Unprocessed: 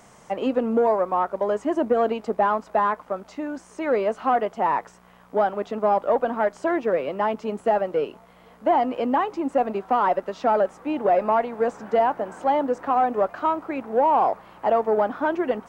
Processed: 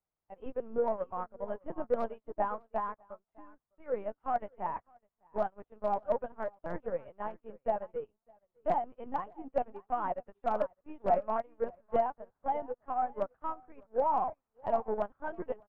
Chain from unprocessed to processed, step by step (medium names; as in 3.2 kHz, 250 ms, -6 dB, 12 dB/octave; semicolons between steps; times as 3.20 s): LPC vocoder at 8 kHz pitch kept; low-pass 2.1 kHz 12 dB/octave; overload inside the chain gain 10.5 dB; on a send: delay 605 ms -12 dB; on the sum: upward expansion 2.5:1, over -40 dBFS; trim -6 dB